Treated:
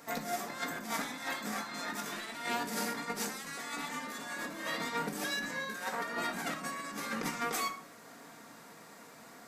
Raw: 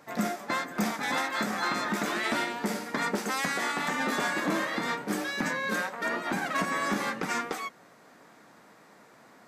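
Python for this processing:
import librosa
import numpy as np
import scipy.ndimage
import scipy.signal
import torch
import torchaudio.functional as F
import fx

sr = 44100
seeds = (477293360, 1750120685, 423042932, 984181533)

y = fx.high_shelf(x, sr, hz=4800.0, db=11.0)
y = fx.over_compress(y, sr, threshold_db=-33.0, ratio=-0.5)
y = fx.room_shoebox(y, sr, seeds[0], volume_m3=660.0, walls='furnished', distance_m=1.7)
y = y * librosa.db_to_amplitude(-6.0)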